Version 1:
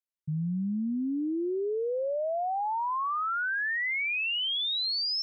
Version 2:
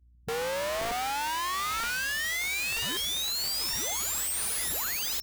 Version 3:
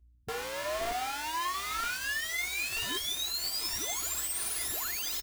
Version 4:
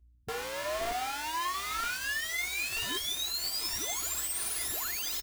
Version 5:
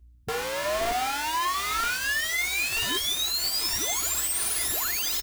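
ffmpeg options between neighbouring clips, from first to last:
-af "aeval=exprs='val(0)+0.00178*(sin(2*PI*60*n/s)+sin(2*PI*2*60*n/s)/2+sin(2*PI*3*60*n/s)/3+sin(2*PI*4*60*n/s)/4+sin(2*PI*5*60*n/s)/5)':c=same,afwtdn=0.0141,aeval=exprs='(mod(25.1*val(0)+1,2)-1)/25.1':c=same"
-af "aecho=1:1:2.9:0.51,areverse,acompressor=mode=upward:threshold=-41dB:ratio=2.5,areverse,flanger=delay=4.7:depth=6.3:regen=-53:speed=1.2:shape=triangular"
-af anull
-af "asoftclip=type=tanh:threshold=-28.5dB,volume=8dB"

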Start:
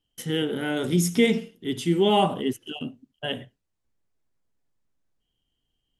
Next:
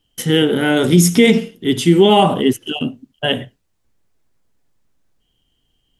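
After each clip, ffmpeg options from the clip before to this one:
-af "alimiter=level_in=13dB:limit=-1dB:release=50:level=0:latency=1,volume=-1dB"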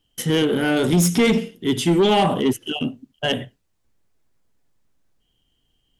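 -af "asoftclip=type=tanh:threshold=-8.5dB,volume=-2.5dB"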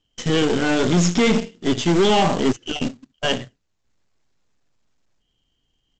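-af "aeval=exprs='0.282*(cos(1*acos(clip(val(0)/0.282,-1,1)))-cos(1*PI/2))+0.0355*(cos(4*acos(clip(val(0)/0.282,-1,1)))-cos(4*PI/2))+0.01*(cos(7*acos(clip(val(0)/0.282,-1,1)))-cos(7*PI/2))+0.00794*(cos(8*acos(clip(val(0)/0.282,-1,1)))-cos(8*PI/2))':c=same,aresample=16000,acrusher=bits=3:mode=log:mix=0:aa=0.000001,aresample=44100"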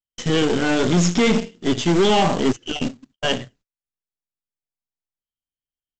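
-af "agate=range=-30dB:threshold=-51dB:ratio=16:detection=peak"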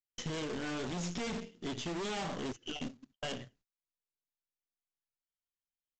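-af "aresample=16000,aeval=exprs='0.168*(abs(mod(val(0)/0.168+3,4)-2)-1)':c=same,aresample=44100,acompressor=threshold=-31dB:ratio=2.5,volume=-8dB"

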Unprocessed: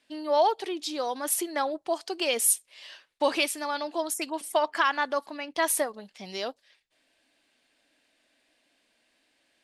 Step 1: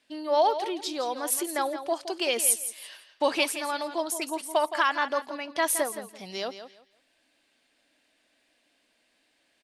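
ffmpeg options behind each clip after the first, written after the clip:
-af "aecho=1:1:168|336|504:0.282|0.0592|0.0124"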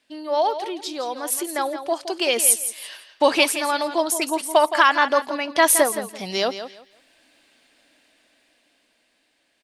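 -af "dynaudnorm=f=610:g=7:m=11.5dB,volume=1.5dB"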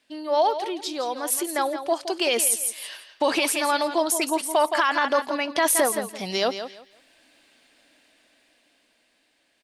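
-af "alimiter=limit=-11.5dB:level=0:latency=1:release=13"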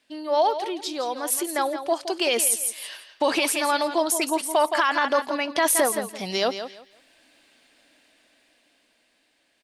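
-af anull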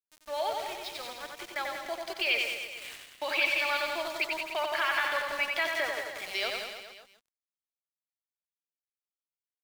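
-af "highpass=f=460:w=0.5412,highpass=f=460:w=1.3066,equalizer=f=500:t=q:w=4:g=-9,equalizer=f=730:t=q:w=4:g=-6,equalizer=f=1k:t=q:w=4:g=-7,equalizer=f=2.3k:t=q:w=4:g=9,lowpass=f=4.6k:w=0.5412,lowpass=f=4.6k:w=1.3066,aeval=exprs='val(0)*gte(abs(val(0)),0.02)':c=same,aecho=1:1:90|189|297.9|417.7|549.5:0.631|0.398|0.251|0.158|0.1,volume=-6.5dB"

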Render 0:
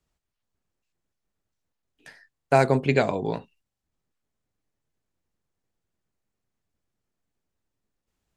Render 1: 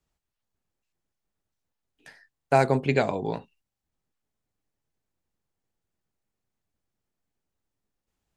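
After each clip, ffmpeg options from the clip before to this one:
-af "equalizer=f=820:w=6.9:g=3,volume=-2dB"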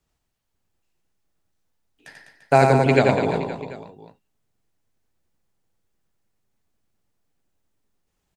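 -af "aecho=1:1:90|202.5|343.1|518.9|738.6:0.631|0.398|0.251|0.158|0.1,volume=4.5dB"

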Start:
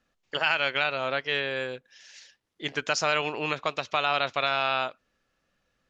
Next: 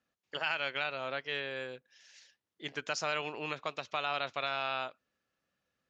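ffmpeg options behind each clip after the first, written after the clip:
-af "highpass=81,volume=-8.5dB"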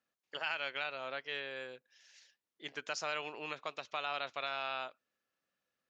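-af "lowshelf=f=160:g=-12,volume=-3.5dB"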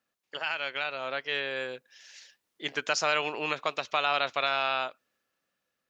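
-af "dynaudnorm=f=350:g=7:m=6.5dB,volume=4.5dB"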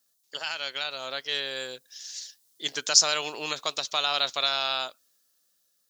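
-af "aexciter=amount=7.3:drive=4.6:freq=3.6k,volume=-2.5dB"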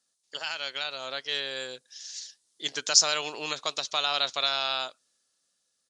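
-af "aresample=22050,aresample=44100,volume=-1dB"

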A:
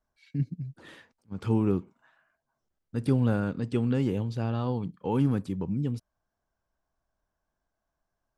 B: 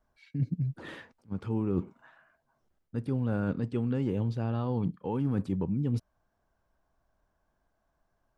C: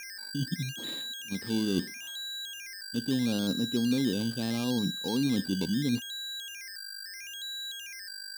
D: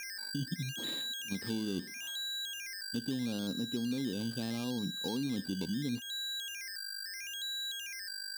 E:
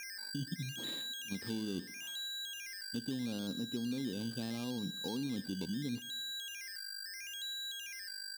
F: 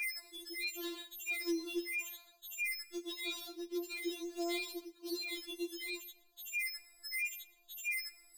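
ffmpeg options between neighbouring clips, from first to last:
-af "highshelf=f=3.4k:g=-9.5,areverse,acompressor=threshold=-33dB:ratio=12,areverse,volume=7.5dB"
-af "aeval=exprs='val(0)+0.0158*sin(2*PI*1600*n/s)':c=same,acrusher=samples=11:mix=1:aa=0.000001:lfo=1:lforange=6.6:lforate=0.76,equalizer=f=100:t=o:w=0.67:g=-10,equalizer=f=250:t=o:w=0.67:g=8,equalizer=f=1.6k:t=o:w=0.67:g=-8,equalizer=f=4k:t=o:w=0.67:g=12,volume=-2dB"
-af "acompressor=threshold=-33dB:ratio=4"
-af "aecho=1:1:119|238|357:0.0891|0.0348|0.0136,volume=-3dB"
-af "afftfilt=real='re*4*eq(mod(b,16),0)':imag='im*4*eq(mod(b,16),0)':win_size=2048:overlap=0.75,volume=6dB"

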